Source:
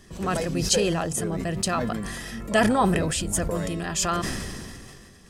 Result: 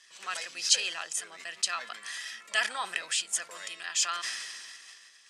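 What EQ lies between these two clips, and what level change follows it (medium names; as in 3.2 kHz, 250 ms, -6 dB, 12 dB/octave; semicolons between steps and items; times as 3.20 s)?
Butterworth band-pass 5.5 kHz, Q 0.51; distance through air 87 m; treble shelf 7.9 kHz +9 dB; +2.0 dB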